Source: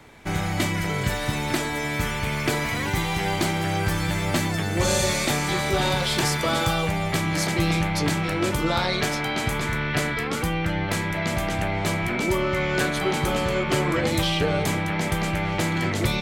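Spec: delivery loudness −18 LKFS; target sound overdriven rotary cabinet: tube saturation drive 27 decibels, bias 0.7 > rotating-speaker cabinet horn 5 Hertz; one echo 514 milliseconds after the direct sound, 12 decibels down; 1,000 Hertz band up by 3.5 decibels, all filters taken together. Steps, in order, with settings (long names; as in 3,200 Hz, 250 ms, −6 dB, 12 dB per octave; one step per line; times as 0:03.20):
parametric band 1,000 Hz +4.5 dB
single-tap delay 514 ms −12 dB
tube saturation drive 27 dB, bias 0.7
rotating-speaker cabinet horn 5 Hz
level +14.5 dB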